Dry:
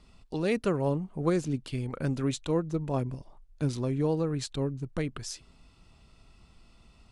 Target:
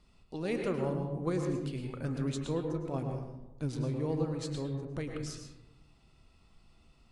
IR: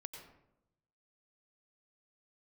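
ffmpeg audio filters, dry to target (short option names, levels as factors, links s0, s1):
-filter_complex "[0:a]flanger=delay=5.4:depth=7.1:regen=-82:speed=0.85:shape=triangular[s0];[1:a]atrim=start_sample=2205,asetrate=37485,aresample=44100[s1];[s0][s1]afir=irnorm=-1:irlink=0,volume=1.33"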